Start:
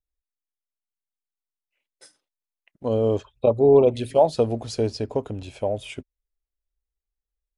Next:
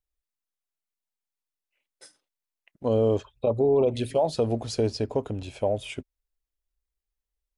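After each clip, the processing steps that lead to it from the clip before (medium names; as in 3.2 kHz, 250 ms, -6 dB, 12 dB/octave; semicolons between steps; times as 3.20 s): peak limiter -14.5 dBFS, peak gain reduction 8.5 dB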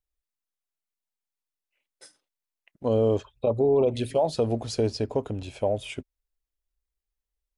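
no audible change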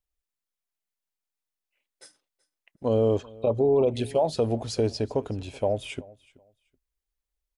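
feedback delay 378 ms, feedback 21%, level -23 dB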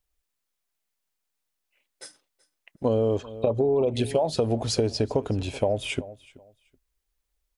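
compression, threshold -27 dBFS, peak gain reduction 9 dB; trim +7 dB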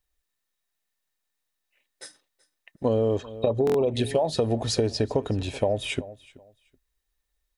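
small resonant body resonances 1.8/3.8 kHz, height 13 dB, ringing for 55 ms; buffer glitch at 3.65 s, samples 1024, times 3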